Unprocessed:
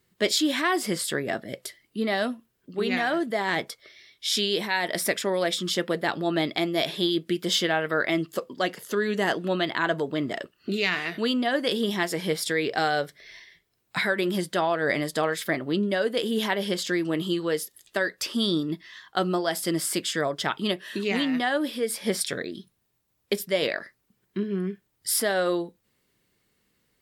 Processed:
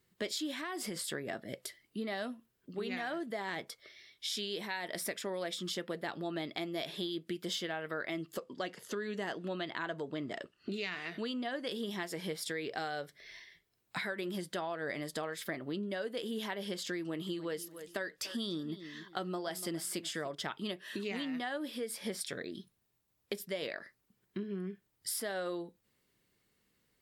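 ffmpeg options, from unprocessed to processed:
-filter_complex "[0:a]asettb=1/sr,asplit=3[s0][s1][s2];[s0]atrim=end=0.534[s3];[s1]atrim=start=0.53:end=1.07,asetpts=PTS-STARTPTS,afade=t=in:d=0.004:c=qsin,afade=t=out:st=0.536:d=0.004:c=qsin,acompressor=threshold=0.0501:ratio=6:attack=3.2:release=140:knee=1:detection=peak[s4];[s2]atrim=start=1.066[s5];[s3][s4]acrossfade=d=0.004:c1=hsin:c2=qsin[s6];[s6][s5]acrossfade=d=0.004:c1=qsin:c2=hsin,asettb=1/sr,asplit=3[s7][s8][s9];[s7]atrim=end=8.384[s10];[s8]atrim=start=8.38:end=11.67,asetpts=PTS-STARTPTS,afade=t=in:d=0.004:c=qsin,afade=t=out:st=3.286:d=0.004:c=qsin,lowpass=9400[s11];[s9]atrim=start=11.666[s12];[s10][s11]acrossfade=d=0.004:c1=hsin:c2=qsin[s13];[s13][s12]acrossfade=d=0.004:c1=qsin:c2=hsin,asettb=1/sr,asplit=3[s14][s15][s16];[s14]atrim=end=16.984[s17];[s15]atrim=start=16.98:end=20.35,asetpts=PTS-STARTPTS,afade=t=in:d=0.004:c=qsin,afade=t=out:st=3.366:d=0.004:c=qsin,asplit=2[s18][s19];[s19]adelay=291,lowpass=f=4000:p=1,volume=0.141,asplit=2[s20][s21];[s21]adelay=291,lowpass=f=4000:p=1,volume=0.25[s22];[s18][s20][s22]amix=inputs=3:normalize=0,atrim=end_sample=148617[s23];[s16]atrim=start=20.346[s24];[s17][s23]acrossfade=d=0.004:c1=hsin:c2=qsin[s25];[s25][s24]acrossfade=d=0.004:c1=qsin:c2=hsin,acompressor=threshold=0.0251:ratio=3,volume=0.562"

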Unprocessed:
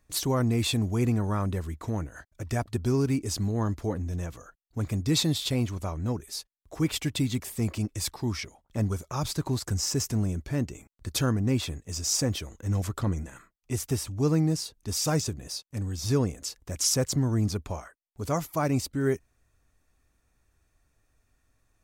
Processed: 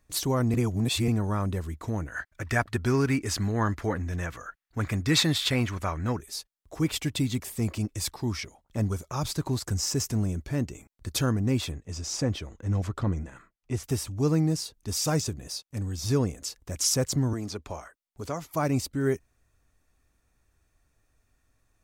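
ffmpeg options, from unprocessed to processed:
-filter_complex "[0:a]asettb=1/sr,asplit=3[s0][s1][s2];[s0]atrim=end=2.074[s3];[s1]atrim=start=2.07:end=6.2,asetpts=PTS-STARTPTS,afade=t=in:d=0.004:c=qsin,afade=t=out:st=4.126:d=0.004:c=qsin,equalizer=f=1700:t=o:w=1.5:g=13[s4];[s2]atrim=start=6.196[s5];[s3][s4]acrossfade=d=0.004:c1=hsin:c2=qsin[s6];[s6][s5]acrossfade=d=0.004:c1=qsin:c2=hsin,asplit=3[s7][s8][s9];[s7]afade=t=out:st=11.71:d=0.02[s10];[s8]aemphasis=mode=reproduction:type=50fm,afade=t=in:st=11.71:d=0.02,afade=t=out:st=13.83:d=0.02[s11];[s9]afade=t=in:st=13.83:d=0.02[s12];[s10][s11][s12]amix=inputs=3:normalize=0,asettb=1/sr,asplit=3[s13][s14][s15];[s13]atrim=end=17.334[s16];[s14]atrim=start=17.33:end=18.51,asetpts=PTS-STARTPTS,afade=t=in:d=0.004:c=qsin,afade=t=out:st=1.176:d=0.004:c=qsin,acrossover=split=280|7600[s17][s18][s19];[s17]acompressor=threshold=0.0112:ratio=4[s20];[s18]acompressor=threshold=0.0316:ratio=4[s21];[s19]acompressor=threshold=0.00112:ratio=4[s22];[s20][s21][s22]amix=inputs=3:normalize=0[s23];[s15]atrim=start=18.506[s24];[s16][s23]acrossfade=d=0.004:c1=hsin:c2=qsin[s25];[s25][s24]acrossfade=d=0.004:c1=qsin:c2=hsin,asplit=3[s26][s27][s28];[s26]atrim=end=0.542[s29];[s27]atrim=start=0.538:end=1.082,asetpts=PTS-STARTPTS,areverse[s30];[s28]atrim=start=1.078[s31];[s29][s30]acrossfade=d=0.004:c1=hsin:c2=hsin[s32];[s32][s31]acrossfade=d=0.004:c1=hsin:c2=hsin"

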